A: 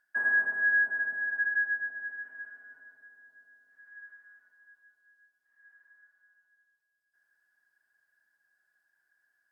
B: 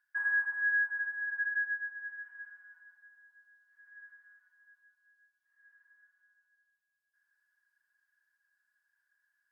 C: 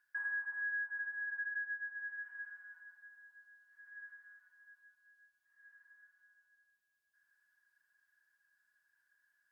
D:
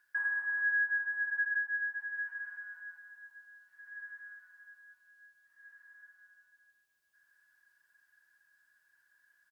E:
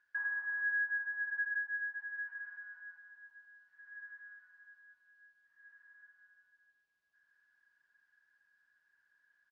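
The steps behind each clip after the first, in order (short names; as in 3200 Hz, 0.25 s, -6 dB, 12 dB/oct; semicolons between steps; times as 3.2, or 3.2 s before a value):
Chebyshev high-pass 930 Hz, order 4; gain -3.5 dB
compressor 2.5:1, threshold -43 dBFS, peak gain reduction 11 dB; gain +1.5 dB
echo 0.186 s -7.5 dB; gain +6 dB
air absorption 140 m; gain -2.5 dB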